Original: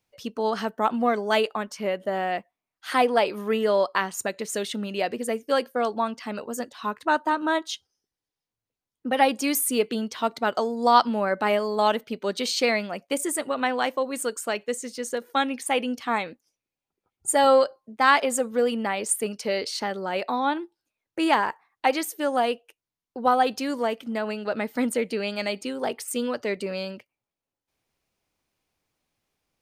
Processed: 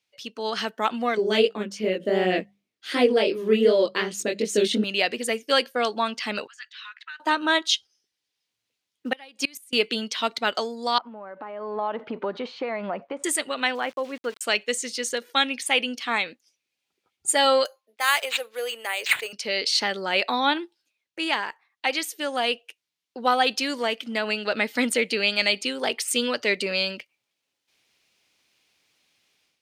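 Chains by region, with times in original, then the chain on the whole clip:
0:01.17–0:04.84: low shelf with overshoot 590 Hz +12 dB, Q 1.5 + chorus effect 2.7 Hz, delay 16.5 ms, depth 7.5 ms + mains-hum notches 50/100/150/200 Hz
0:06.47–0:07.20: Butterworth high-pass 1,500 Hz + downward compressor 5 to 1, threshold −37 dBFS + head-to-tape spacing loss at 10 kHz 29 dB
0:07.71–0:09.73: floating-point word with a short mantissa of 6 bits + gate with flip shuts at −15 dBFS, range −28 dB
0:10.98–0:13.24: mu-law and A-law mismatch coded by mu + downward compressor 12 to 1, threshold −30 dBFS + low-pass with resonance 1,000 Hz, resonance Q 1.9
0:13.75–0:14.41: low-pass filter 1,500 Hz + centre clipping without the shift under −45 dBFS
0:17.65–0:19.33: high-pass filter 420 Hz 24 dB per octave + bad sample-rate conversion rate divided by 4×, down none, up hold
whole clip: meter weighting curve D; automatic gain control; level −6.5 dB

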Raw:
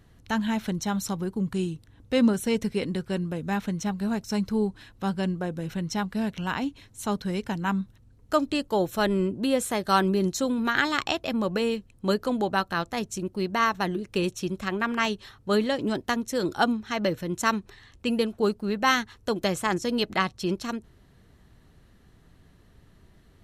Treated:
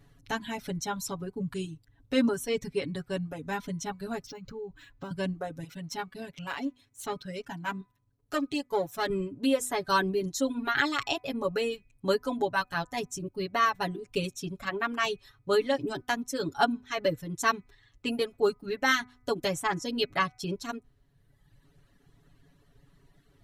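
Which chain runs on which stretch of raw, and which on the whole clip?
0:04.26–0:05.11: low-pass filter 8,100 Hz 24 dB per octave + downward compressor 16 to 1, threshold −29 dBFS + linearly interpolated sample-rate reduction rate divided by 4×
0:05.64–0:09.10: gain on one half-wave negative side −7 dB + high-pass filter 120 Hz 6 dB per octave
whole clip: hum removal 249.5 Hz, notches 10; reverb reduction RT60 1.4 s; comb filter 7.1 ms, depth 98%; level −4.5 dB

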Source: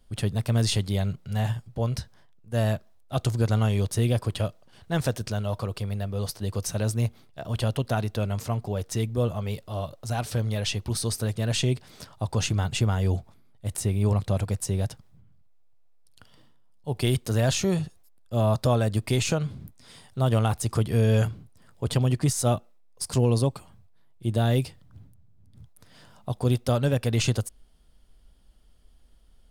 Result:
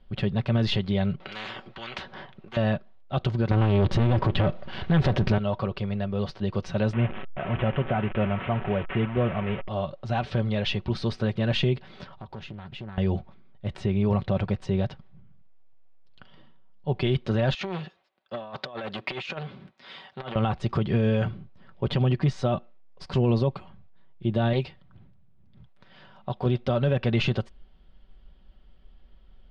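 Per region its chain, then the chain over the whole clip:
0:01.20–0:02.57: upward compression, threshold −44 dBFS + high-frequency loss of the air 64 metres + every bin compressed towards the loudest bin 10 to 1
0:03.51–0:05.38: spectral tilt −1.5 dB per octave + leveller curve on the samples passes 3 + one half of a high-frequency compander encoder only
0:06.93–0:09.68: linear delta modulator 16 kbit/s, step −31.5 dBFS + hollow resonant body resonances 690/1,300 Hz, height 6 dB, ringing for 90 ms
0:12.11–0:12.98: downward compressor 3 to 1, threshold −43 dBFS + highs frequency-modulated by the lows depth 0.54 ms
0:17.54–0:20.36: meter weighting curve A + compressor whose output falls as the input rises −33 dBFS, ratio −0.5 + saturating transformer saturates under 2,600 Hz
0:24.53–0:26.46: low-shelf EQ 420 Hz −5.5 dB + highs frequency-modulated by the lows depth 0.2 ms
whole clip: low-pass filter 3,500 Hz 24 dB per octave; comb filter 5.3 ms, depth 46%; brickwall limiter −18 dBFS; level +3 dB

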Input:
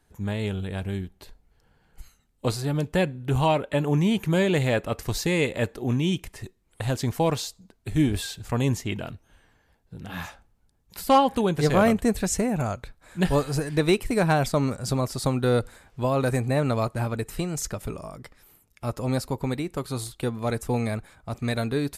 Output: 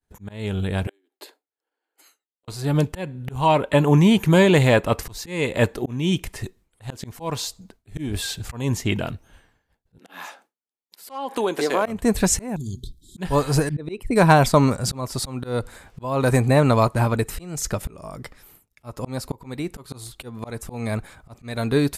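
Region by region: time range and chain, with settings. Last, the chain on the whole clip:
0:00.87–0:02.48: Butterworth high-pass 280 Hz 72 dB per octave + notch filter 5,800 Hz, Q 9.6 + gate with flip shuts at −30 dBFS, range −35 dB
0:09.98–0:11.86: high-pass filter 280 Hz 24 dB per octave + downward compressor 3 to 1, threshold −26 dBFS
0:12.56–0:13.18: linear-phase brick-wall band-stop 420–3,100 Hz + mains-hum notches 60/120 Hz + downward compressor 2.5 to 1, threshold −33 dBFS
0:13.69–0:14.16: spectral envelope exaggerated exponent 1.5 + downward expander −33 dBFS
whole clip: downward expander −53 dBFS; dynamic equaliser 990 Hz, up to +7 dB, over −47 dBFS, Q 5.9; volume swells 351 ms; level +7 dB

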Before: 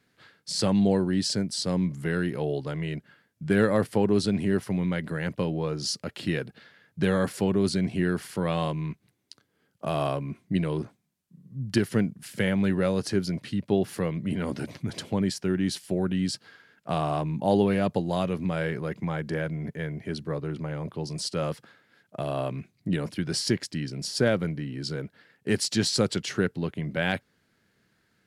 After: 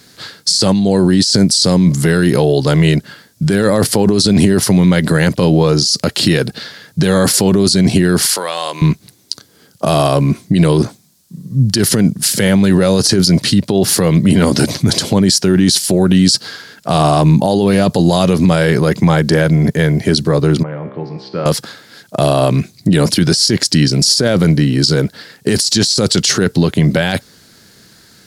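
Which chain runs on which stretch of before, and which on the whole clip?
0:08.26–0:08.82: high-pass filter 660 Hz + downward compressor, threshold −37 dBFS
0:20.63–0:21.46: low-pass filter 2,400 Hz 24 dB per octave + parametric band 67 Hz −14.5 dB 0.71 octaves + tuned comb filter 66 Hz, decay 1.7 s, mix 80%
whole clip: high shelf with overshoot 3,400 Hz +8.5 dB, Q 1.5; compressor whose output falls as the input rises −27 dBFS, ratio −1; boost into a limiter +20 dB; level −1 dB

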